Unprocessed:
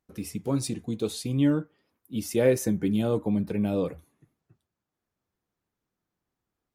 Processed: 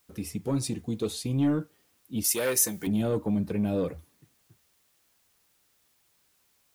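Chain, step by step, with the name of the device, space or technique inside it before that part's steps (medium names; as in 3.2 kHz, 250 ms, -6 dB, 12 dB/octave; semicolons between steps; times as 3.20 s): open-reel tape (saturation -18 dBFS, distortion -15 dB; peaking EQ 77 Hz +4 dB; white noise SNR 38 dB); 2.24–2.87 s: tilt EQ +4 dB/octave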